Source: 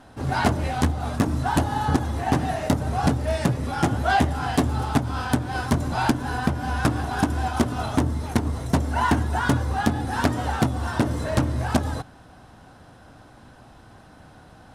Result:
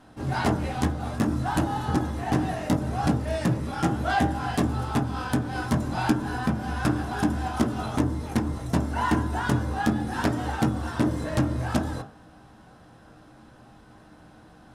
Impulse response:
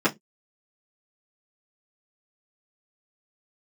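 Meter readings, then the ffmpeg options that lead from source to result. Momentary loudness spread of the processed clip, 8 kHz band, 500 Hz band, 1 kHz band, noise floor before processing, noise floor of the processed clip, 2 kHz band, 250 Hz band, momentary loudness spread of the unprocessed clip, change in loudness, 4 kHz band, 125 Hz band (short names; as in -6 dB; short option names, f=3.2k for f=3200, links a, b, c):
3 LU, -4.5 dB, -3.0 dB, -4.0 dB, -49 dBFS, -52 dBFS, -3.5 dB, -1.0 dB, 3 LU, -2.5 dB, -4.0 dB, -3.0 dB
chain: -filter_complex "[0:a]bandreject=f=53.1:t=h:w=4,bandreject=f=106.2:t=h:w=4,bandreject=f=159.3:t=h:w=4,bandreject=f=212.4:t=h:w=4,bandreject=f=265.5:t=h:w=4,bandreject=f=318.6:t=h:w=4,bandreject=f=371.7:t=h:w=4,bandreject=f=424.8:t=h:w=4,bandreject=f=477.9:t=h:w=4,bandreject=f=531:t=h:w=4,bandreject=f=584.1:t=h:w=4,bandreject=f=637.2:t=h:w=4,bandreject=f=690.3:t=h:w=4,bandreject=f=743.4:t=h:w=4,bandreject=f=796.5:t=h:w=4,bandreject=f=849.6:t=h:w=4,bandreject=f=902.7:t=h:w=4,bandreject=f=955.8:t=h:w=4,bandreject=f=1.0089k:t=h:w=4,bandreject=f=1.062k:t=h:w=4,bandreject=f=1.1151k:t=h:w=4,bandreject=f=1.1682k:t=h:w=4,bandreject=f=1.2213k:t=h:w=4,bandreject=f=1.2744k:t=h:w=4,bandreject=f=1.3275k:t=h:w=4,bandreject=f=1.3806k:t=h:w=4,bandreject=f=1.4337k:t=h:w=4,bandreject=f=1.4868k:t=h:w=4,bandreject=f=1.5399k:t=h:w=4,bandreject=f=1.593k:t=h:w=4,bandreject=f=1.6461k:t=h:w=4,bandreject=f=1.6992k:t=h:w=4,bandreject=f=1.7523k:t=h:w=4,asplit=2[a][b];[1:a]atrim=start_sample=2205,adelay=10[c];[b][c]afir=irnorm=-1:irlink=0,volume=-19dB[d];[a][d]amix=inputs=2:normalize=0,volume=-4.5dB"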